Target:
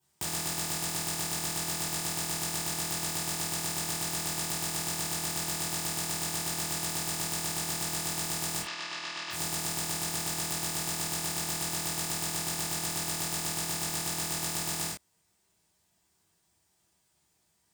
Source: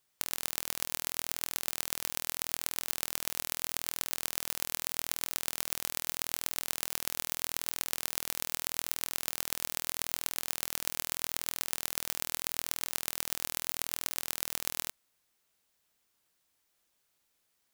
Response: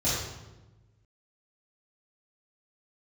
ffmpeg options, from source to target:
-filter_complex "[0:a]asplit=3[link_01][link_02][link_03];[link_01]afade=type=out:start_time=8.59:duration=0.02[link_04];[link_02]highpass=430,equalizer=frequency=440:width_type=q:width=4:gain=-9,equalizer=frequency=770:width_type=q:width=4:gain=-9,equalizer=frequency=1100:width_type=q:width=4:gain=4,equalizer=frequency=1800:width_type=q:width=4:gain=3,equalizer=frequency=2700:width_type=q:width=4:gain=5,lowpass=frequency=5000:width=0.5412,lowpass=frequency=5000:width=1.3066,afade=type=in:start_time=8.59:duration=0.02,afade=type=out:start_time=9.3:duration=0.02[link_05];[link_03]afade=type=in:start_time=9.3:duration=0.02[link_06];[link_04][link_05][link_06]amix=inputs=3:normalize=0[link_07];[1:a]atrim=start_sample=2205,atrim=end_sample=4410,asetrate=57330,aresample=44100[link_08];[link_07][link_08]afir=irnorm=-1:irlink=0,volume=-3.5dB"

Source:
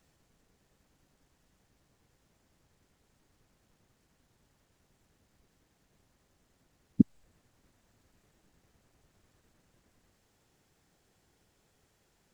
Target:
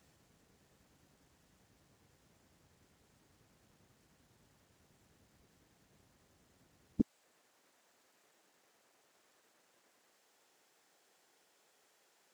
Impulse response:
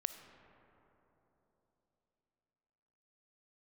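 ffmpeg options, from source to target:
-af "asetnsamples=nb_out_samples=441:pad=0,asendcmd='7 highpass f 460',highpass=62,volume=2dB"

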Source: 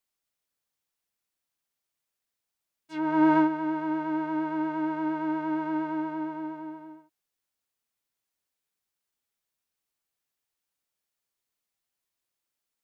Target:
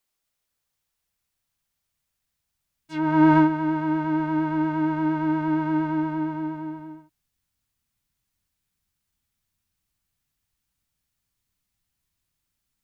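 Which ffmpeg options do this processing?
ffmpeg -i in.wav -af "asubboost=boost=9:cutoff=150,volume=5dB" out.wav

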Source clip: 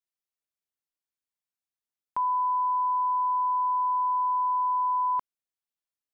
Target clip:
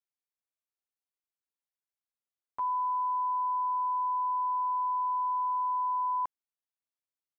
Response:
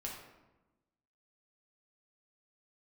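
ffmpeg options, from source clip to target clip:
-af "equalizer=frequency=820:width_type=o:width=2.4:gain=4.5,atempo=0.83,volume=-8.5dB"

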